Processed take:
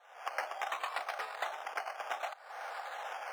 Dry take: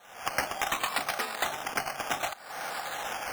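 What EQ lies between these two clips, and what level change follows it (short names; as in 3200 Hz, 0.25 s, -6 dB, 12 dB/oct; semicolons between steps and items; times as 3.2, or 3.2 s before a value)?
HPF 520 Hz 24 dB/oct; LPF 1600 Hz 6 dB/oct; -4.0 dB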